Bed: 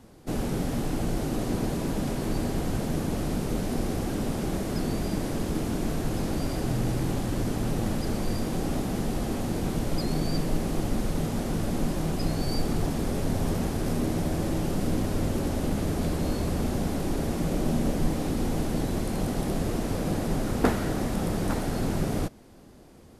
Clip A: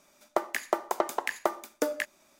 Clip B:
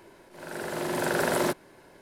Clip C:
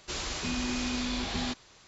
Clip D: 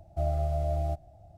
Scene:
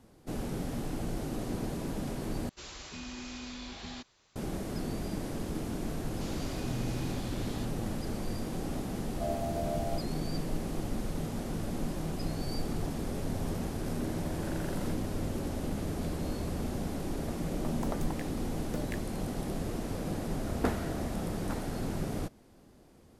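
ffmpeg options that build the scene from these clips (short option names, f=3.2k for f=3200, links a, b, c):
-filter_complex "[3:a]asplit=2[a][b];[4:a]asplit=2[c][d];[0:a]volume=-7dB[e];[b]asoftclip=type=hard:threshold=-28dB[f];[c]bass=f=250:g=-14,treble=f=4k:g=4[g];[2:a]aresample=32000,aresample=44100[h];[1:a]tremolo=f=0.97:d=0.87[i];[e]asplit=2[j][k];[j]atrim=end=2.494[l];[a]atrim=end=1.87,asetpts=PTS-STARTPTS,volume=-10.5dB[m];[k]atrim=start=4.356[n];[f]atrim=end=1.87,asetpts=PTS-STARTPTS,volume=-12.5dB,afade=t=in:d=0.004:c=hsin,afade=t=out:st=1.866:d=0.004:c=hsin,adelay=6120[o];[g]atrim=end=1.37,asetpts=PTS-STARTPTS,volume=-1.5dB,afade=t=in:d=0.004:c=hsin,afade=t=out:st=1.366:d=0.004:c=hsin,adelay=9030[p];[h]atrim=end=2.01,asetpts=PTS-STARTPTS,volume=-18dB,afade=t=in:d=0.004:c=hsin,afade=t=out:st=2.006:d=0.004:c=hsin,adelay=13410[q];[i]atrim=end=2.39,asetpts=PTS-STARTPTS,volume=-11.5dB,afade=t=in:d=0.004:c=hsin,afade=t=out:st=2.386:d=0.004:c=hsin,adelay=16920[r];[d]atrim=end=1.37,asetpts=PTS-STARTPTS,volume=-14.5dB,afade=t=in:d=0.004:c=hsin,afade=t=out:st=1.366:d=0.004:c=hsin,adelay=20270[s];[l][m]acrossfade=d=0.004:c1=hsin:c2=hsin[t];[t][n]acrossfade=d=0.004:c1=hsin:c2=hsin[u];[u][o][p][q][r][s]amix=inputs=6:normalize=0"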